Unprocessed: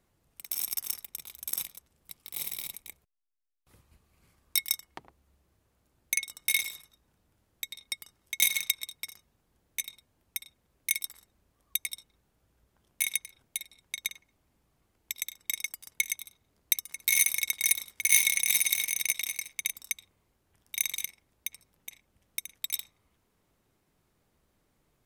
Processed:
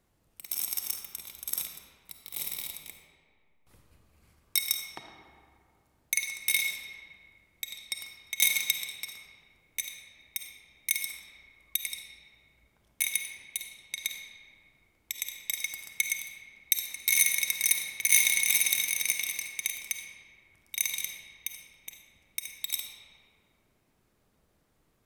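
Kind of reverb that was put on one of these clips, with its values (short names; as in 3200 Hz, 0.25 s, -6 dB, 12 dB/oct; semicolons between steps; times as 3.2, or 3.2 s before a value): digital reverb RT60 2.2 s, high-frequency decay 0.55×, pre-delay 10 ms, DRR 3.5 dB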